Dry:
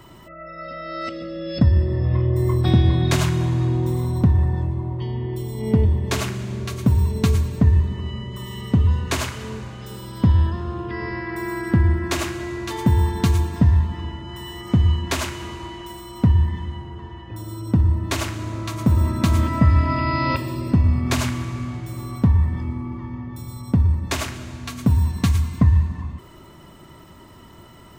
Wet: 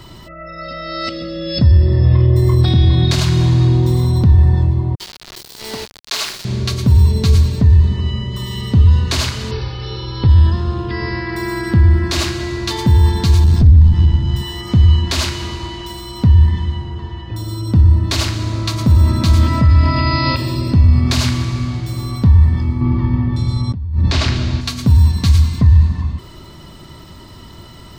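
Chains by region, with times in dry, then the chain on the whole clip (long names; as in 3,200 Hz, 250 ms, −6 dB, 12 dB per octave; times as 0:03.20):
0:04.95–0:06.45: high-pass filter 730 Hz + bit-depth reduction 6 bits, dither none
0:09.51–0:10.28: linear-phase brick-wall low-pass 6,000 Hz + comb filter 2.3 ms, depth 74%
0:13.44–0:14.42: tube saturation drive 19 dB, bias 0.6 + bass and treble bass +14 dB, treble +4 dB
0:22.81–0:24.61: low-pass filter 4,800 Hz + low-shelf EQ 330 Hz +4 dB + compressor whose output falls as the input rises −24 dBFS
whole clip: parametric band 4,400 Hz +12.5 dB 0.9 octaves; brickwall limiter −12.5 dBFS; low-shelf EQ 140 Hz +8.5 dB; level +4 dB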